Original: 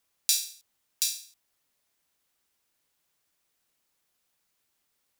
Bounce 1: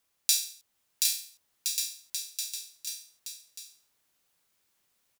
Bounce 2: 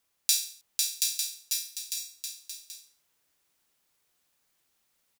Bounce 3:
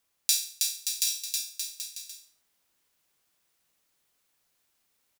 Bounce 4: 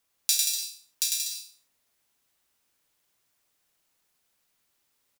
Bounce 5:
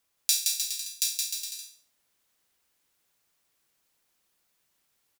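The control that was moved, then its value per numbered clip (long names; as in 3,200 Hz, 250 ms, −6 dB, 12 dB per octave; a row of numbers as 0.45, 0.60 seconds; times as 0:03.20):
bouncing-ball delay, first gap: 760, 500, 320, 100, 170 milliseconds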